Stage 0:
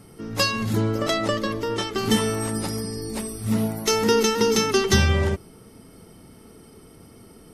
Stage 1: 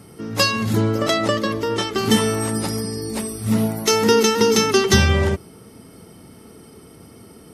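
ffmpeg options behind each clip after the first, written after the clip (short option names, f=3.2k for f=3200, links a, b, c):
-af "highpass=65,volume=4dB"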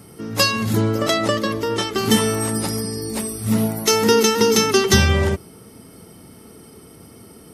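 -af "highshelf=f=10k:g=7"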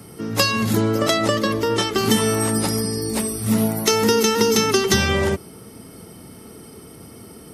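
-filter_complex "[0:a]acrossover=split=150|5300[a][b][c];[a]acompressor=threshold=-30dB:ratio=4[d];[b]acompressor=threshold=-18dB:ratio=4[e];[c]acompressor=threshold=-27dB:ratio=4[f];[d][e][f]amix=inputs=3:normalize=0,volume=2.5dB"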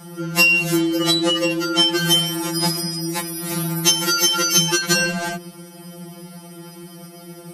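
-af "afftfilt=real='re*2.83*eq(mod(b,8),0)':imag='im*2.83*eq(mod(b,8),0)':win_size=2048:overlap=0.75,volume=5.5dB"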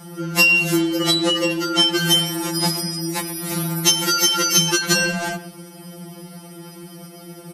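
-filter_complex "[0:a]asplit=2[a][b];[b]adelay=120,highpass=300,lowpass=3.4k,asoftclip=type=hard:threshold=-9.5dB,volume=-15dB[c];[a][c]amix=inputs=2:normalize=0"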